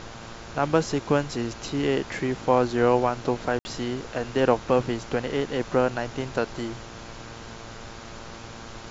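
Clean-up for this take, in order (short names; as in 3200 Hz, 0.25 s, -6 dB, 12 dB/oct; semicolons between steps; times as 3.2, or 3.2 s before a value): de-hum 114.2 Hz, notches 14; room tone fill 3.59–3.65; noise print and reduce 28 dB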